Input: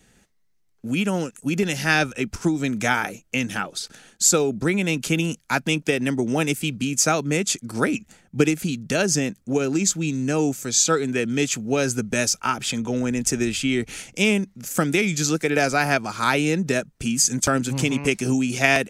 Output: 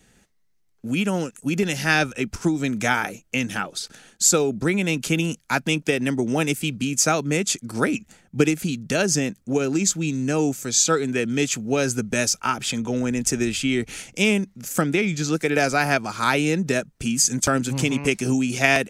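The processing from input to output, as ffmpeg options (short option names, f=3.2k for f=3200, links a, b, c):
-filter_complex "[0:a]asettb=1/sr,asplit=3[a][b][c];[a]atrim=end=14.814[d];[b]atrim=start=14.81:end=15.33,asetpts=PTS-STARTPTS,afade=t=in:d=0.004:c=qsin,afade=t=out:st=0.516:d=0.004:c=qsin,aemphasis=mode=reproduction:type=50kf[e];[c]atrim=start=15.326[f];[d][e]acrossfade=d=0.004:c1=hsin:c2=qsin[g];[g][f]acrossfade=d=0.004:c1=qsin:c2=hsin"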